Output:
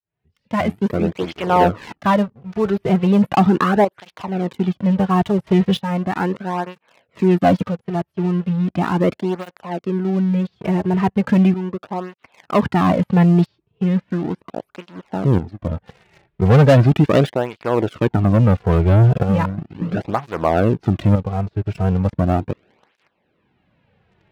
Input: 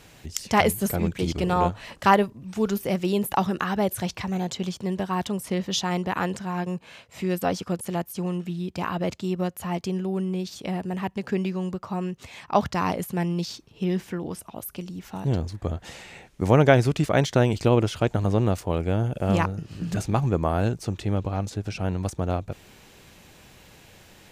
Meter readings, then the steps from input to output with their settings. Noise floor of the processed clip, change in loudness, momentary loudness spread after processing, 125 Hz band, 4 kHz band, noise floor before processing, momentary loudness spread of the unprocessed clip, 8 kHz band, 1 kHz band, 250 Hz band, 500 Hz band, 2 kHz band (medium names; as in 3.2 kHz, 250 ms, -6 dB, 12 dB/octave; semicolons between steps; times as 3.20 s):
-70 dBFS, +7.5 dB, 13 LU, +8.5 dB, 0.0 dB, -52 dBFS, 11 LU, no reading, +5.5 dB, +9.0 dB, +6.0 dB, +2.5 dB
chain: fade-in on the opening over 1.19 s; distance through air 400 m; tremolo saw up 0.52 Hz, depth 70%; treble shelf 6.7 kHz -7 dB; waveshaping leveller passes 3; cancelling through-zero flanger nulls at 0.37 Hz, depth 4.2 ms; trim +5 dB